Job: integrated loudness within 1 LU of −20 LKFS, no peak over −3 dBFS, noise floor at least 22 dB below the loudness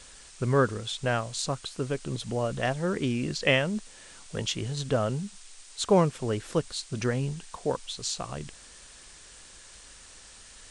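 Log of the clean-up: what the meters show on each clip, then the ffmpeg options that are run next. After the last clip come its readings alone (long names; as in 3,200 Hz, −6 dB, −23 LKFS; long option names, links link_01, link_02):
background noise floor −50 dBFS; target noise floor −51 dBFS; integrated loudness −29.0 LKFS; sample peak −8.5 dBFS; target loudness −20.0 LKFS
→ -af "afftdn=noise_reduction=6:noise_floor=-50"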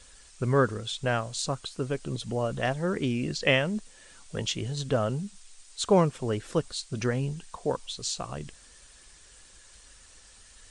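background noise floor −54 dBFS; integrated loudness −29.0 LKFS; sample peak −8.5 dBFS; target loudness −20.0 LKFS
→ -af "volume=9dB,alimiter=limit=-3dB:level=0:latency=1"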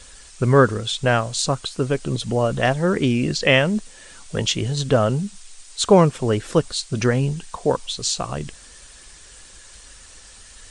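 integrated loudness −20.5 LKFS; sample peak −3.0 dBFS; background noise floor −45 dBFS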